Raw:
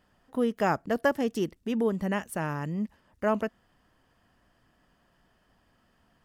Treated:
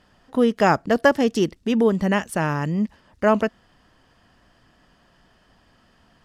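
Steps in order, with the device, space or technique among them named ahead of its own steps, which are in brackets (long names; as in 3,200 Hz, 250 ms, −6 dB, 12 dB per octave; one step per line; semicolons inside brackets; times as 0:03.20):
high-frequency loss of the air 51 metres
presence and air boost (parametric band 4,600 Hz +4.5 dB 1.3 octaves; high-shelf EQ 9,100 Hz +7 dB)
level +8.5 dB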